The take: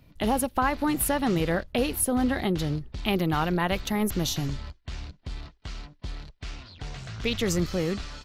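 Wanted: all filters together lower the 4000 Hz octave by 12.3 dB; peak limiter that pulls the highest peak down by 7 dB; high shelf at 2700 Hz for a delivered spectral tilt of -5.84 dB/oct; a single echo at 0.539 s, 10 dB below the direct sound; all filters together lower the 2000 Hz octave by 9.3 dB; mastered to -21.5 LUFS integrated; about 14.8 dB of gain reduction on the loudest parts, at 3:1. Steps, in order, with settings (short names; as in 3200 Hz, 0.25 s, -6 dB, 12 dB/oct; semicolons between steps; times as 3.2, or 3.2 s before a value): bell 2000 Hz -7.5 dB; high shelf 2700 Hz -6 dB; bell 4000 Hz -8.5 dB; compressor 3:1, threshold -42 dBFS; limiter -33 dBFS; echo 0.539 s -10 dB; gain +22.5 dB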